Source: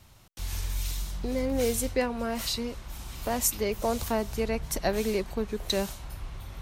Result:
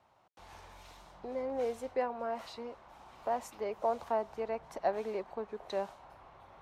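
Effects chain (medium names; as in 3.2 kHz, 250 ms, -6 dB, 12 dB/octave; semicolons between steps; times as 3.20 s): band-pass filter 790 Hz, Q 1.7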